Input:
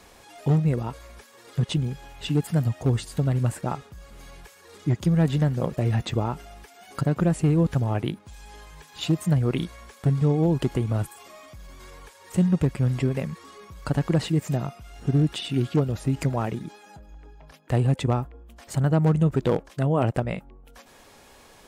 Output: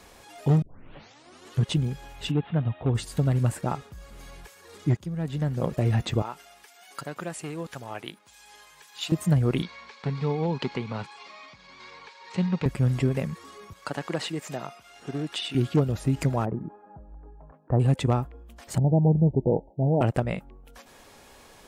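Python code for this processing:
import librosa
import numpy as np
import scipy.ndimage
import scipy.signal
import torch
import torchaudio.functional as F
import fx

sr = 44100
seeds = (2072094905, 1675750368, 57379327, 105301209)

y = fx.cheby_ripple(x, sr, hz=3800.0, ripple_db=3, at=(2.3, 2.94), fade=0.02)
y = fx.highpass(y, sr, hz=1300.0, slope=6, at=(6.22, 9.12))
y = fx.cabinet(y, sr, low_hz=210.0, low_slope=12, high_hz=5500.0, hz=(320.0, 640.0, 930.0, 2300.0, 4200.0), db=(-10, -7, 6, 7, 8), at=(9.62, 12.66))
y = fx.weighting(y, sr, curve='A', at=(13.73, 15.55))
y = fx.lowpass(y, sr, hz=1200.0, slope=24, at=(16.44, 17.79), fade=0.02)
y = fx.cheby1_lowpass(y, sr, hz=920.0, order=10, at=(18.78, 20.01))
y = fx.edit(y, sr, fx.tape_start(start_s=0.62, length_s=1.04),
    fx.fade_in_from(start_s=4.97, length_s=0.72, curve='qua', floor_db=-12.5), tone=tone)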